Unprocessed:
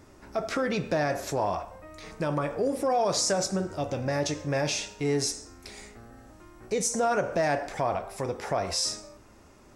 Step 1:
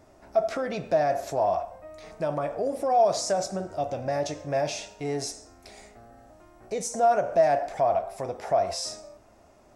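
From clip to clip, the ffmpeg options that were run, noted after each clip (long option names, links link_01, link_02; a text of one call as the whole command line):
ffmpeg -i in.wav -af "equalizer=frequency=670:width=3.1:gain=13.5,volume=-5dB" out.wav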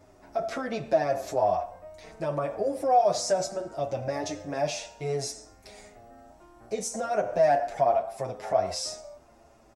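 ffmpeg -i in.wav -filter_complex "[0:a]asplit=2[link_01][link_02];[link_02]adelay=7.6,afreqshift=-0.69[link_03];[link_01][link_03]amix=inputs=2:normalize=1,volume=2.5dB" out.wav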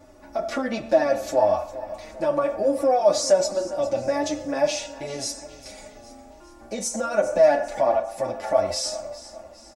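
ffmpeg -i in.wav -af "aecho=1:1:3.5:0.72,aecho=1:1:406|812|1218|1624:0.158|0.0761|0.0365|0.0175,volume=3.5dB" out.wav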